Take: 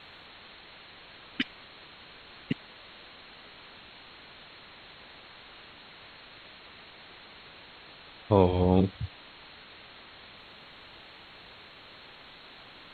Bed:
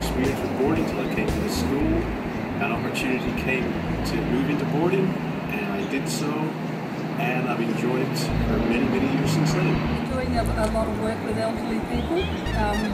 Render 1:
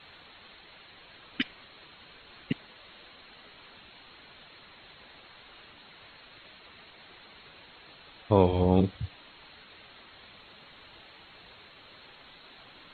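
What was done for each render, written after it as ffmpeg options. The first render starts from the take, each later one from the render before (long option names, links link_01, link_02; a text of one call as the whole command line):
ffmpeg -i in.wav -af "afftdn=noise_reduction=6:noise_floor=-51" out.wav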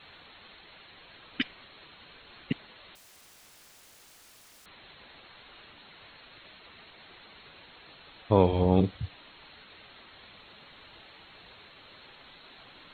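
ffmpeg -i in.wav -filter_complex "[0:a]asettb=1/sr,asplit=3[link_01][link_02][link_03];[link_01]atrim=end=2.954[link_04];[link_02]atrim=start=2.95:end=4.66,asetpts=PTS-STARTPTS,afade=type=in:duration=0.004:curve=qsin,afade=type=out:start_time=1.706:duration=0.004:curve=qsin,aeval=exprs='(mod(355*val(0)+1,2)-1)/355':channel_layout=same[link_05];[link_03]atrim=start=4.656[link_06];[link_04][link_05]acrossfade=duration=0.004:curve1=hsin:curve2=qsin[link_07];[link_07][link_06]acrossfade=duration=0.004:curve1=qsin:curve2=hsin" out.wav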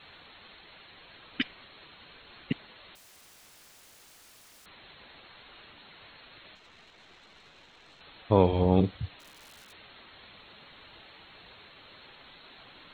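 ffmpeg -i in.wav -filter_complex "[0:a]asettb=1/sr,asplit=3[link_01][link_02][link_03];[link_01]atrim=end=6.554[link_04];[link_02]atrim=start=6.55:end=8.01,asetpts=PTS-STARTPTS,afade=type=in:duration=0.004:curve=qsin,afade=type=out:start_time=1.456:duration=0.004:curve=qsin,aeval=exprs='(tanh(200*val(0)+0.7)-tanh(0.7))/200':channel_layout=same[link_05];[link_03]atrim=start=8.006[link_06];[link_04][link_05]acrossfade=duration=0.004:curve1=hsin:curve2=qsin[link_07];[link_07][link_06]acrossfade=duration=0.004:curve1=qsin:curve2=hsin,asplit=3[link_08][link_09][link_10];[link_08]afade=type=out:start_time=9.19:duration=0.02[link_11];[link_09]aeval=exprs='(mod(188*val(0)+1,2)-1)/188':channel_layout=same,afade=type=in:start_time=9.19:duration=0.02,afade=type=out:start_time=9.71:duration=0.02[link_12];[link_10]afade=type=in:start_time=9.71:duration=0.02[link_13];[link_11][link_12][link_13]amix=inputs=3:normalize=0" out.wav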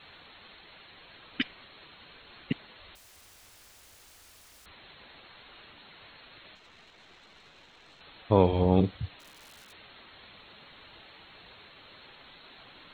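ffmpeg -i in.wav -filter_complex "[0:a]asettb=1/sr,asplit=3[link_01][link_02][link_03];[link_01]atrim=end=2.794[link_04];[link_02]atrim=start=2.79:end=4.72,asetpts=PTS-STARTPTS,afade=type=in:duration=0.004:curve=qsin,afade=type=out:start_time=1.926:duration=0.004:curve=qsin,lowshelf=frequency=110:width_type=q:width=1.5:gain=7[link_05];[link_03]atrim=start=4.716[link_06];[link_04][link_05]acrossfade=duration=0.004:curve1=hsin:curve2=qsin[link_07];[link_07][link_06]acrossfade=duration=0.004:curve1=qsin:curve2=hsin" out.wav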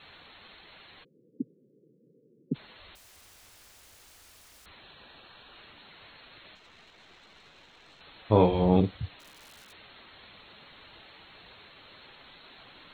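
ffmpeg -i in.wav -filter_complex "[0:a]asplit=3[link_01][link_02][link_03];[link_01]afade=type=out:start_time=1.03:duration=0.02[link_04];[link_02]asuperpass=centerf=250:order=20:qfactor=0.66,afade=type=in:start_time=1.03:duration=0.02,afade=type=out:start_time=2.54:duration=0.02[link_05];[link_03]afade=type=in:start_time=2.54:duration=0.02[link_06];[link_04][link_05][link_06]amix=inputs=3:normalize=0,asettb=1/sr,asplit=3[link_07][link_08][link_09];[link_07]atrim=end=4.814[link_10];[link_08]atrim=start=4.81:end=5.56,asetpts=PTS-STARTPTS,afade=type=in:duration=0.004:curve=qsin,afade=type=out:start_time=0.746:duration=0.004:curve=qsin,asuperstop=centerf=2100:order=4:qfactor=6.9[link_11];[link_09]atrim=start=5.556[link_12];[link_10][link_11]acrossfade=duration=0.004:curve1=hsin:curve2=qsin[link_13];[link_13][link_12]acrossfade=duration=0.004:curve1=qsin:curve2=hsin,asettb=1/sr,asplit=3[link_14][link_15][link_16];[link_14]atrim=end=8.234[link_17];[link_15]atrim=start=8.23:end=8.77,asetpts=PTS-STARTPTS,afade=type=in:duration=0.004:curve=qsin,afade=type=out:start_time=0.536:duration=0.004:curve=qsin,asplit=2[link_18][link_19];[link_19]adelay=28,volume=-5.5dB[link_20];[link_18][link_20]amix=inputs=2:normalize=0,atrim=end_sample=23814[link_21];[link_16]atrim=start=8.766[link_22];[link_17][link_21]acrossfade=duration=0.004:curve1=hsin:curve2=qsin[link_23];[link_23][link_22]acrossfade=duration=0.004:curve1=qsin:curve2=hsin" out.wav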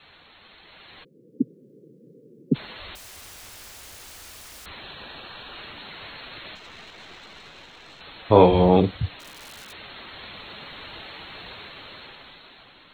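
ffmpeg -i in.wav -filter_complex "[0:a]acrossover=split=320|1100|5300[link_01][link_02][link_03][link_04];[link_01]alimiter=limit=-23.5dB:level=0:latency=1[link_05];[link_05][link_02][link_03][link_04]amix=inputs=4:normalize=0,dynaudnorm=framelen=250:gausssize=9:maxgain=12dB" out.wav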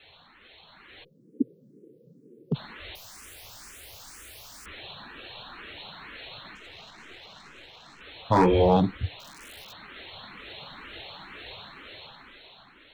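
ffmpeg -i in.wav -filter_complex "[0:a]volume=8.5dB,asoftclip=hard,volume=-8.5dB,asplit=2[link_01][link_02];[link_02]afreqshift=2.1[link_03];[link_01][link_03]amix=inputs=2:normalize=1" out.wav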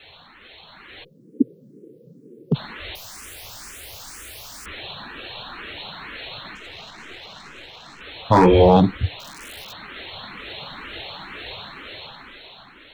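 ffmpeg -i in.wav -af "volume=7.5dB,alimiter=limit=-3dB:level=0:latency=1" out.wav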